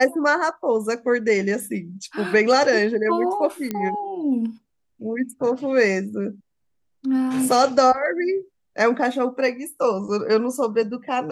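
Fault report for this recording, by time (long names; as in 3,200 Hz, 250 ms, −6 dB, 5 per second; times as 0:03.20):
0:03.71: click −12 dBFS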